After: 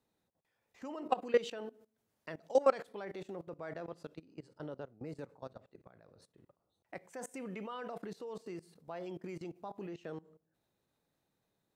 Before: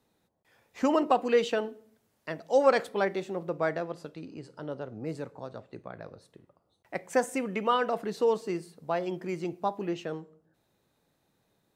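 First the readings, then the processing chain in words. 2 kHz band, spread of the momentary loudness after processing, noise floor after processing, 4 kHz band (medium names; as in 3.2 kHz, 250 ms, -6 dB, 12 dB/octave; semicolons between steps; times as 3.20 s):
-13.0 dB, 18 LU, -83 dBFS, -11.5 dB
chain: level held to a coarse grid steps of 20 dB; trim -2.5 dB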